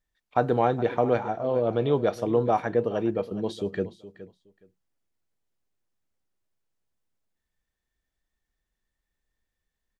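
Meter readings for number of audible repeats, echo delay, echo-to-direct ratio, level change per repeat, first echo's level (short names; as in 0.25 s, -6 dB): 2, 0.418 s, -15.5 dB, -15.0 dB, -15.5 dB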